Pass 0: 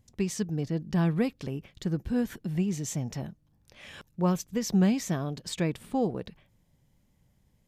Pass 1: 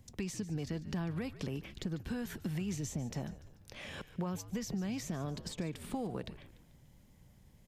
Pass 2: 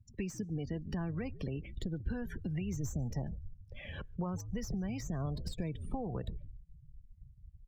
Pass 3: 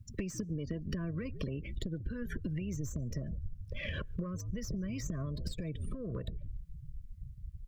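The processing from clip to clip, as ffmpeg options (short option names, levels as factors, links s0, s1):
-filter_complex "[0:a]alimiter=level_in=1.12:limit=0.0631:level=0:latency=1:release=201,volume=0.891,acrossover=split=160|850[s0][s1][s2];[s0]acompressor=threshold=0.00282:ratio=4[s3];[s1]acompressor=threshold=0.00562:ratio=4[s4];[s2]acompressor=threshold=0.00251:ratio=4[s5];[s3][s4][s5]amix=inputs=3:normalize=0,asplit=5[s6][s7][s8][s9][s10];[s7]adelay=146,afreqshift=-76,volume=0.178[s11];[s8]adelay=292,afreqshift=-152,volume=0.0822[s12];[s9]adelay=438,afreqshift=-228,volume=0.0376[s13];[s10]adelay=584,afreqshift=-304,volume=0.0174[s14];[s6][s11][s12][s13][s14]amix=inputs=5:normalize=0,volume=1.88"
-filter_complex "[0:a]afftdn=nr=31:nf=-46,asubboost=boost=5.5:cutoff=96,acrossover=split=220|2800[s0][s1][s2];[s2]aeval=exprs='clip(val(0),-1,0.00335)':c=same[s3];[s0][s1][s3]amix=inputs=3:normalize=0,volume=1.12"
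-af "acompressor=threshold=0.00708:ratio=16,aeval=exprs='0.015*(cos(1*acos(clip(val(0)/0.015,-1,1)))-cos(1*PI/2))+0.00188*(cos(2*acos(clip(val(0)/0.015,-1,1)))-cos(2*PI/2))':c=same,asuperstop=centerf=820:order=20:qfactor=2.5,volume=2.99"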